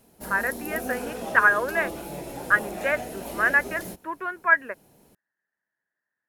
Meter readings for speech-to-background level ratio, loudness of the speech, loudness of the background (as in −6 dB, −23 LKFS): 11.0 dB, −24.0 LKFS, −35.0 LKFS